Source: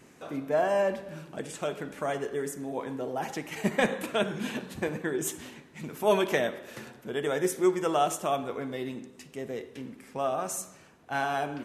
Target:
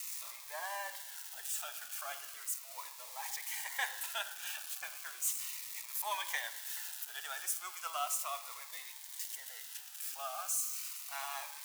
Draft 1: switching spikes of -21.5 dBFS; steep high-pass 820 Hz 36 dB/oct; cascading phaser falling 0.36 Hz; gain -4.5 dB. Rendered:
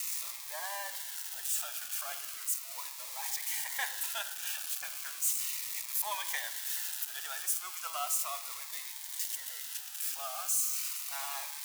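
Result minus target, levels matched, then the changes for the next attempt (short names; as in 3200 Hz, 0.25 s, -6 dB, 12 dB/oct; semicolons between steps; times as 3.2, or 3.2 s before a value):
switching spikes: distortion +6 dB
change: switching spikes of -28 dBFS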